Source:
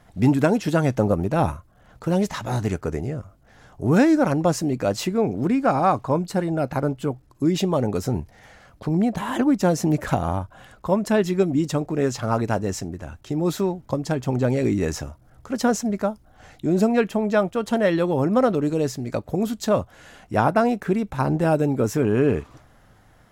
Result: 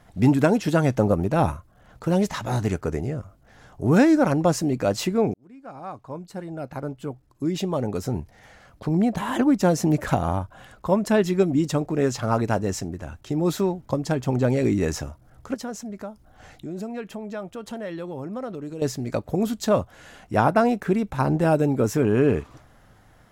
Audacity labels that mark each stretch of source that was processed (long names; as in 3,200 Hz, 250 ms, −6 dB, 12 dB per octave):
5.340000	9.110000	fade in
15.540000	18.820000	downward compressor 2 to 1, threshold −40 dBFS